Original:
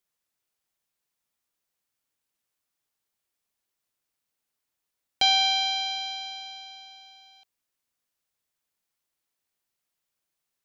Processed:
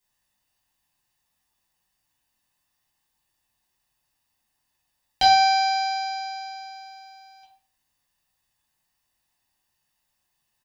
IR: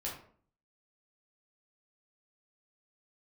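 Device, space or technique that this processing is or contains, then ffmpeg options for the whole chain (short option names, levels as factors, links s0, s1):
microphone above a desk: -filter_complex "[0:a]aecho=1:1:1.1:0.59[s0];[1:a]atrim=start_sample=2205[s1];[s0][s1]afir=irnorm=-1:irlink=0,volume=2.11"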